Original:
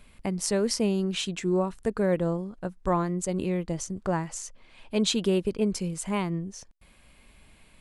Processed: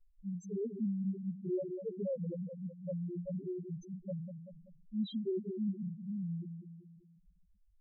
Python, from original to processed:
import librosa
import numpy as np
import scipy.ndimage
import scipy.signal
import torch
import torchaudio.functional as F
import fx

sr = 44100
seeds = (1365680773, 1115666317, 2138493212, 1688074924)

y = fx.echo_split(x, sr, split_hz=950.0, low_ms=193, high_ms=271, feedback_pct=52, wet_db=-7)
y = fx.spec_topn(y, sr, count=1)
y = F.gain(torch.from_numpy(y), -4.0).numpy()